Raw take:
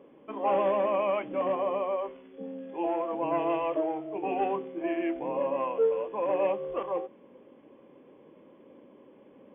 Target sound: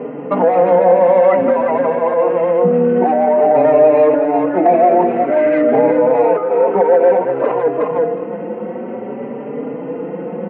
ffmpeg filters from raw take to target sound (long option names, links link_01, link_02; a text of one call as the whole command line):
ffmpeg -i in.wav -filter_complex "[0:a]aecho=1:1:1.4:0.44,acompressor=threshold=-35dB:ratio=12,asoftclip=type=tanh:threshold=-33.5dB,highpass=frequency=170:width=0.5412,highpass=frequency=170:width=1.3066,asplit=2[link_01][link_02];[link_02]aecho=0:1:330|660|990:0.473|0.0804|0.0137[link_03];[link_01][link_03]amix=inputs=2:normalize=0,asetrate=40087,aresample=44100,lowpass=1600,alimiter=level_in=34.5dB:limit=-1dB:release=50:level=0:latency=1,asplit=2[link_04][link_05];[link_05]adelay=4.5,afreqshift=0.52[link_06];[link_04][link_06]amix=inputs=2:normalize=1,volume=-1dB" out.wav